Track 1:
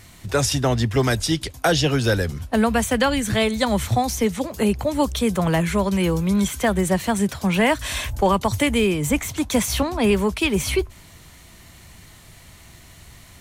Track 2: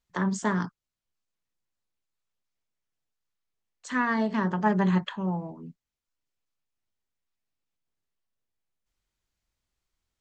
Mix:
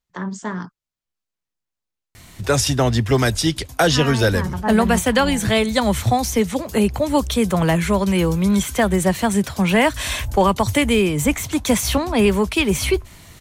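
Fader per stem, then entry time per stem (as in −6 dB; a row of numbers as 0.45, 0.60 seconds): +2.5, −0.5 decibels; 2.15, 0.00 seconds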